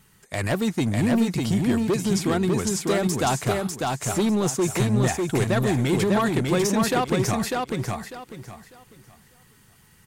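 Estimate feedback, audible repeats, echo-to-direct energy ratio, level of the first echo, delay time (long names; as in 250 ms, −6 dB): 25%, 3, −2.5 dB, −3.0 dB, 598 ms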